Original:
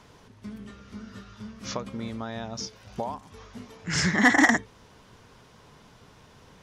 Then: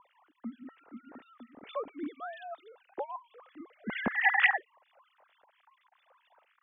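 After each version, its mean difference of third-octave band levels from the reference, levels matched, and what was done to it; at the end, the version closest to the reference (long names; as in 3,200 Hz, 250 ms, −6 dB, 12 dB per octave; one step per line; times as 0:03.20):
13.5 dB: three sine waves on the formant tracks
high-frequency loss of the air 120 metres
two-band tremolo in antiphase 4.4 Hz, depth 100%, crossover 1,700 Hz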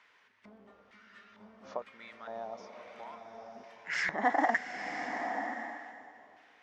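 9.5 dB: parametric band 130 Hz −9 dB 0.42 octaves
auto-filter band-pass square 1.1 Hz 700–2,000 Hz
slow-attack reverb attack 1,020 ms, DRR 5.5 dB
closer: second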